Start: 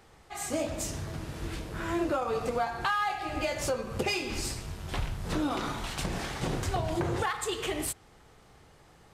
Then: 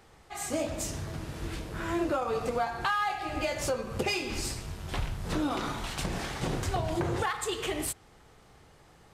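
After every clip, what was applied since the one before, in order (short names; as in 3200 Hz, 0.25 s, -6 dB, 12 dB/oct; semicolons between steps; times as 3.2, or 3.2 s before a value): nothing audible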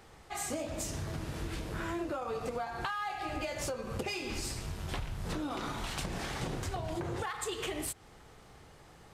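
compressor, threshold -35 dBFS, peak gain reduction 10 dB; gain +1.5 dB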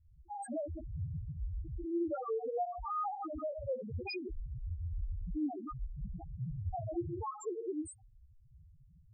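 loudest bins only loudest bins 1; gain +8 dB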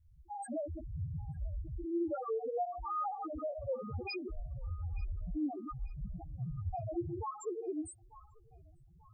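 band-limited delay 0.89 s, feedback 37%, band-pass 1500 Hz, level -16.5 dB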